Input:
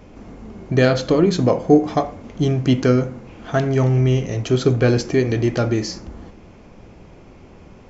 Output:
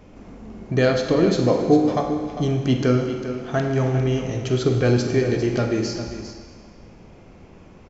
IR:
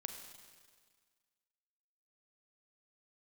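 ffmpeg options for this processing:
-filter_complex "[0:a]aecho=1:1:400:0.282[a];[1:a]atrim=start_sample=2205[b];[a][b]afir=irnorm=-1:irlink=0"

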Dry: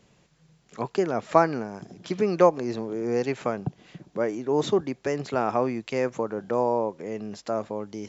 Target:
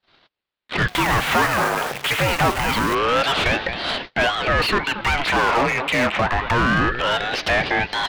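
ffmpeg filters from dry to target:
-filter_complex "[0:a]highpass=f=420:t=q:w=0.5412,highpass=f=420:t=q:w=1.307,lowpass=f=3.5k:t=q:w=0.5176,lowpass=f=3.5k:t=q:w=0.7071,lowpass=f=3.5k:t=q:w=1.932,afreqshift=-78,asplit=2[a][b];[b]acompressor=threshold=-36dB:ratio=6,volume=2.5dB[c];[a][c]amix=inputs=2:normalize=0,tiltshelf=f=1.1k:g=-9,asplit=2[d][e];[e]aecho=0:1:225|450|675:0.0841|0.0311|0.0115[f];[d][f]amix=inputs=2:normalize=0,asplit=2[g][h];[h]highpass=f=720:p=1,volume=35dB,asoftclip=type=tanh:threshold=-7dB[i];[g][i]amix=inputs=2:normalize=0,lowpass=f=2.3k:p=1,volume=-6dB,asettb=1/sr,asplit=3[j][k][l];[j]atrim=end=0.884[m];[k]atrim=start=0.88:end=2.95,asetpts=PTS-STARTPTS,afade=t=in:d=0.004:c=qsin,afade=t=out:st=2.066:d=0.004:c=qsin,acrusher=bits=5:dc=4:mix=0:aa=0.000001[n];[l]atrim=start=2.946[o];[m][n]acrossfade=d=0.004:c1=hsin:c2=qsin[p];[p][o]acrossfade=d=0.004:c1=qsin:c2=hsin,agate=range=-47dB:threshold=-28dB:ratio=16:detection=peak,aeval=exprs='val(0)*sin(2*PI*680*n/s+680*0.8/0.26*sin(2*PI*0.26*n/s))':c=same"

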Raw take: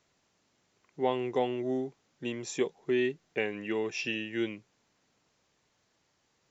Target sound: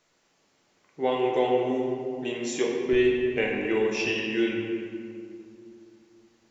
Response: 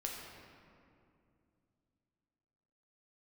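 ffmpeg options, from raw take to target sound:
-filter_complex "[0:a]asetnsamples=n=441:p=0,asendcmd='2.93 equalizer g -3',equalizer=f=75:w=0.87:g=-12[a];[1:a]atrim=start_sample=2205,asetrate=48510,aresample=44100[b];[a][b]afir=irnorm=-1:irlink=0,volume=7dB"

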